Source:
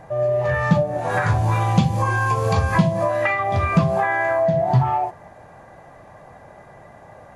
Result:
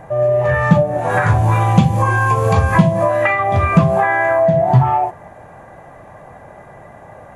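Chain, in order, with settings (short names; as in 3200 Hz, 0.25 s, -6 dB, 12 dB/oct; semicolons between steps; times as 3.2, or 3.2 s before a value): bell 4700 Hz -8.5 dB 0.81 oct; gain +5.5 dB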